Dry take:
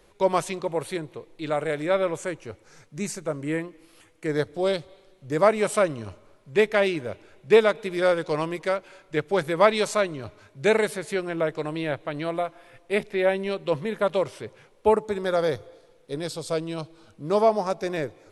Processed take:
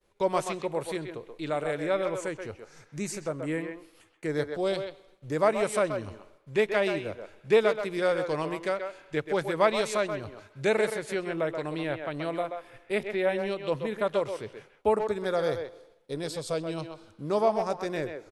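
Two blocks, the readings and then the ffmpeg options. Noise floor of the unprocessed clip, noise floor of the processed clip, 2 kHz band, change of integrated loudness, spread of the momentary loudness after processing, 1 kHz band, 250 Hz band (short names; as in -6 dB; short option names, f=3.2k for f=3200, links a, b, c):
-58 dBFS, -61 dBFS, -4.0 dB, -4.0 dB, 14 LU, -4.0 dB, -3.5 dB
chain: -filter_complex "[0:a]agate=range=-33dB:threshold=-49dB:ratio=3:detection=peak,asplit=2[a][b];[b]adelay=130,highpass=300,lowpass=3.4k,asoftclip=type=hard:threshold=-13.5dB,volume=-7dB[c];[a][c]amix=inputs=2:normalize=0,asplit=2[d][e];[e]acompressor=threshold=-34dB:ratio=6,volume=-1dB[f];[d][f]amix=inputs=2:normalize=0,volume=-6dB"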